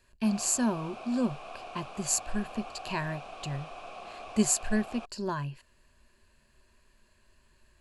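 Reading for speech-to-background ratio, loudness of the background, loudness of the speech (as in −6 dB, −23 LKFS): 13.0 dB, −44.5 LKFS, −31.5 LKFS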